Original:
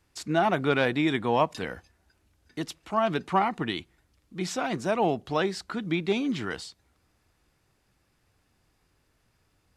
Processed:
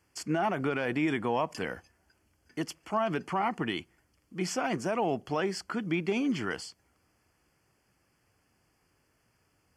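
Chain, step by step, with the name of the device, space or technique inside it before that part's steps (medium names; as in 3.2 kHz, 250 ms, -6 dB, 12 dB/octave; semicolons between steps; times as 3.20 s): PA system with an anti-feedback notch (high-pass 110 Hz 6 dB/octave; Butterworth band-stop 3.8 kHz, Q 3.7; peak limiter -19 dBFS, peak gain reduction 8.5 dB)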